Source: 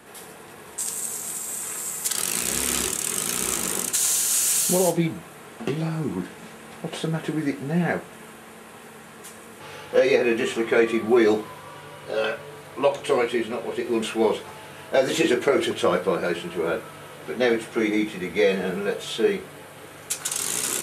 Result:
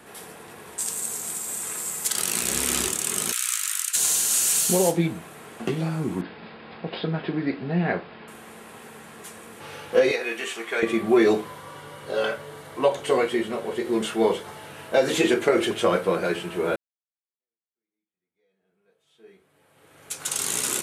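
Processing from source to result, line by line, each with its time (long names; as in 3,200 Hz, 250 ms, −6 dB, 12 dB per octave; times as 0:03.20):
0:03.32–0:03.96: Butterworth high-pass 1,300 Hz
0:06.21–0:08.28: Chebyshev low-pass filter 5,100 Hz, order 10
0:10.11–0:10.83: high-pass filter 1,400 Hz 6 dB per octave
0:11.45–0:14.67: notch filter 2,500 Hz, Q 8.8
0:16.76–0:20.32: fade in exponential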